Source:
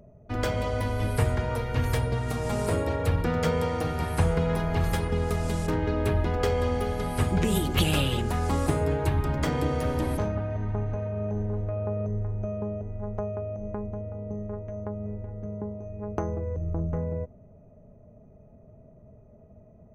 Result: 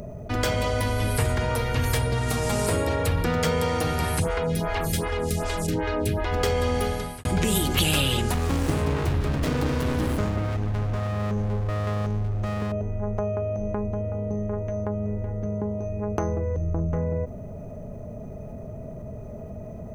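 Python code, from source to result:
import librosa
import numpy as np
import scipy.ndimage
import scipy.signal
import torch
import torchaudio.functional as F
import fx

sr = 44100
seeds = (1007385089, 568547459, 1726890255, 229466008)

y = fx.stagger_phaser(x, sr, hz=2.6, at=(4.18, 6.31), fade=0.02)
y = fx.running_max(y, sr, window=33, at=(8.34, 12.72))
y = fx.edit(y, sr, fx.fade_out_span(start_s=6.85, length_s=0.4, curve='qua'), tone=tone)
y = fx.high_shelf(y, sr, hz=2300.0, db=8.5)
y = fx.env_flatten(y, sr, amount_pct=50)
y = y * 10.0 ** (-2.0 / 20.0)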